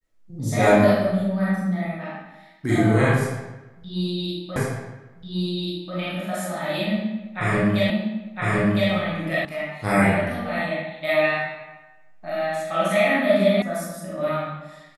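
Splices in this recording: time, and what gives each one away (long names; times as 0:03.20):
0:04.56: the same again, the last 1.39 s
0:07.90: the same again, the last 1.01 s
0:09.45: cut off before it has died away
0:13.62: cut off before it has died away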